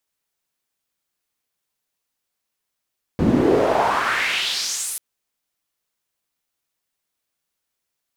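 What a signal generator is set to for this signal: swept filtered noise pink, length 1.79 s bandpass, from 190 Hz, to 11000 Hz, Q 2.9, exponential, gain ramp -12 dB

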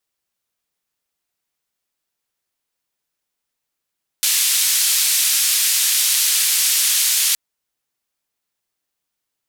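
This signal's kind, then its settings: noise band 2800–13000 Hz, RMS -17 dBFS 3.12 s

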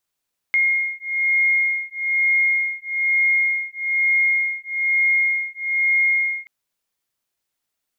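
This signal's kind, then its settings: beating tones 2140 Hz, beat 1.1 Hz, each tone -20 dBFS 5.93 s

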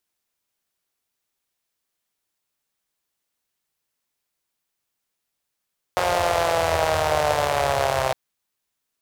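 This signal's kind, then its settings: four-cylinder engine model, changing speed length 2.16 s, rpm 5400, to 3900, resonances 87/630 Hz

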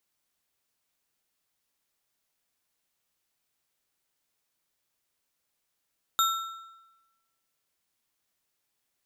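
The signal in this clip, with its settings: metal hit bar, lowest mode 1340 Hz, modes 4, decay 1.10 s, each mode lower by 3.5 dB, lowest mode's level -21 dB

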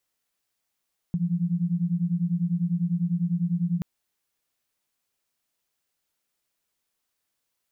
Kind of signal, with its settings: beating tones 168 Hz, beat 10 Hz, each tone -25.5 dBFS 2.68 s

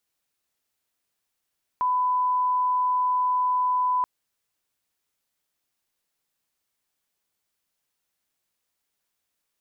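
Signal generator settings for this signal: line-up tone -20 dBFS 2.23 s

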